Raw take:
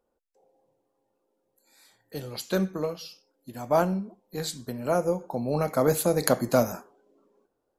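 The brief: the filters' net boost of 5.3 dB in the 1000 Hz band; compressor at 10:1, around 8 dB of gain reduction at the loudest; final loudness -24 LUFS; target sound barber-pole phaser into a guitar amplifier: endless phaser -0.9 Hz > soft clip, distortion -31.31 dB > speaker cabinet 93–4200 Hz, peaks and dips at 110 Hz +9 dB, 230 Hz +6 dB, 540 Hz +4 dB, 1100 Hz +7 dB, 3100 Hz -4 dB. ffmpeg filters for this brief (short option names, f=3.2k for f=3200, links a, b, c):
-filter_complex "[0:a]equalizer=f=1k:t=o:g=3.5,acompressor=threshold=-23dB:ratio=10,asplit=2[a][b];[b]afreqshift=-0.9[c];[a][c]amix=inputs=2:normalize=1,asoftclip=threshold=-13dB,highpass=93,equalizer=f=110:t=q:w=4:g=9,equalizer=f=230:t=q:w=4:g=6,equalizer=f=540:t=q:w=4:g=4,equalizer=f=1.1k:t=q:w=4:g=7,equalizer=f=3.1k:t=q:w=4:g=-4,lowpass=f=4.2k:w=0.5412,lowpass=f=4.2k:w=1.3066,volume=8.5dB"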